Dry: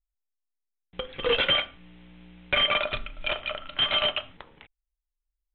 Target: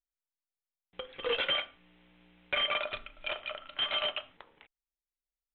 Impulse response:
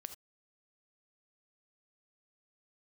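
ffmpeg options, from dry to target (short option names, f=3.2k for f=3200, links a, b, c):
-af "bass=f=250:g=-10,treble=f=4k:g=-3,volume=-6.5dB"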